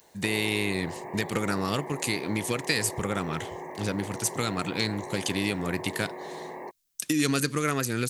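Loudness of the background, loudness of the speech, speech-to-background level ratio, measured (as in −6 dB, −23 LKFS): −39.5 LKFS, −29.0 LKFS, 10.5 dB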